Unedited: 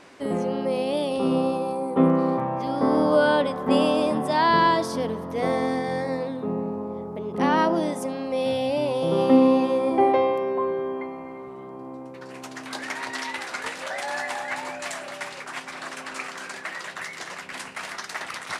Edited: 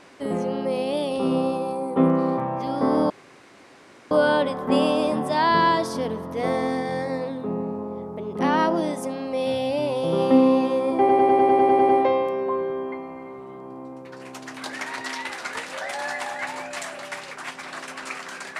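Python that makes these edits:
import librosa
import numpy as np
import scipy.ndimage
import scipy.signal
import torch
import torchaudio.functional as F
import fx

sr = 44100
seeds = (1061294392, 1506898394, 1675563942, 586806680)

y = fx.edit(x, sr, fx.insert_room_tone(at_s=3.1, length_s=1.01),
    fx.stutter(start_s=9.98, slice_s=0.1, count=10), tone=tone)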